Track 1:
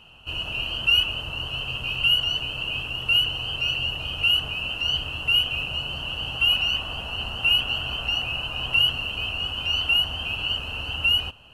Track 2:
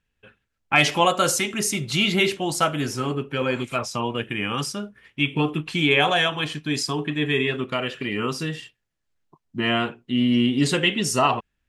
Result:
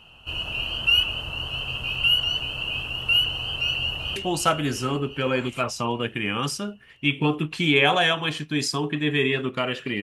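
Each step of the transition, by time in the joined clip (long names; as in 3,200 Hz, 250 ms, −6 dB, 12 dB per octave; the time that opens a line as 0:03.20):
track 1
0:03.71–0:04.16: delay throw 350 ms, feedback 70%, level −9.5 dB
0:04.16: continue with track 2 from 0:02.31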